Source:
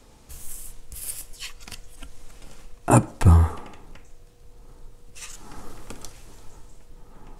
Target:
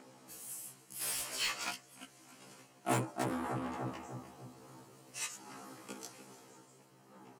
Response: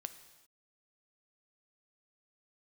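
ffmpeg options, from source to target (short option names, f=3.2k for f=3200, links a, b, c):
-filter_complex "[0:a]flanger=delay=6.6:depth=3.3:regen=54:speed=1.6:shape=triangular,acrossover=split=2000[a][b];[a]acompressor=mode=upward:threshold=-45dB:ratio=2.5[c];[b]bandreject=f=3.6k:w=11[d];[c][d]amix=inputs=2:normalize=0,asplit=2[e][f];[f]adelay=297,lowpass=f=1.6k:p=1,volume=-9.5dB,asplit=2[g][h];[h]adelay=297,lowpass=f=1.6k:p=1,volume=0.43,asplit=2[i][j];[j]adelay=297,lowpass=f=1.6k:p=1,volume=0.43,asplit=2[k][l];[l]adelay=297,lowpass=f=1.6k:p=1,volume=0.43,asplit=2[m][n];[n]adelay=297,lowpass=f=1.6k:p=1,volume=0.43[o];[e][g][i][k][m][o]amix=inputs=6:normalize=0,asettb=1/sr,asplit=3[p][q][r];[p]atrim=end=3.614[s];[q]atrim=start=3.61:end=5.27,asetpts=PTS-STARTPTS,afade=t=in:d=0.004:c=qsin,afade=t=out:st=1.656:d=0.004:c=qsin,acontrast=56[t];[r]atrim=start=5.266[u];[s][t]acrossfade=d=0.004:c1=hsin:c2=qsin[v];[v][u]acrossfade=d=0.004:c1=qsin:c2=hsin,volume=25dB,asoftclip=hard,volume=-25dB,highpass=f=160:w=0.5412,highpass=f=160:w=1.3066,asettb=1/sr,asplit=3[w][x][y];[w]atrim=end=1.014[z];[x]atrim=start=1.01:end=1.71,asetpts=PTS-STARTPTS,afade=t=in:d=0.004:c=qsin,afade=t=out:st=0.696:d=0.004:c=qsin,asplit=2[aa][ab];[ab]highpass=f=720:p=1,volume=26dB,asoftclip=type=tanh:threshold=-23dB[ac];[aa][ac]amix=inputs=2:normalize=0,lowpass=f=4.3k:p=1,volume=-6dB[ad];[y]atrim=start=1.706[ae];[z][ad]acrossfade=d=0.004:c1=hsin:c2=qsin[af];[af][ae]acrossfade=d=0.004:c1=qsin:c2=hsin,afftfilt=real='re*1.73*eq(mod(b,3),0)':imag='im*1.73*eq(mod(b,3),0)':win_size=2048:overlap=0.75,volume=1dB"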